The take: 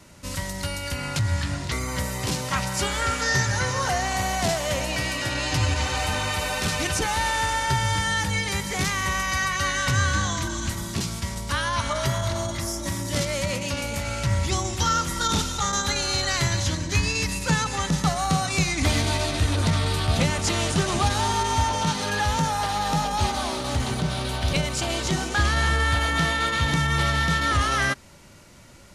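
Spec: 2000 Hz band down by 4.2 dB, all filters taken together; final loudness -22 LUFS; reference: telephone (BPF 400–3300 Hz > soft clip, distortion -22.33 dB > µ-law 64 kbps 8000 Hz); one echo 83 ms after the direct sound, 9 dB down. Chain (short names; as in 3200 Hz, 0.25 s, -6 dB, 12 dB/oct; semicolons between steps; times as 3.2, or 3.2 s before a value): BPF 400–3300 Hz; bell 2000 Hz -4.5 dB; echo 83 ms -9 dB; soft clip -18.5 dBFS; gain +8 dB; µ-law 64 kbps 8000 Hz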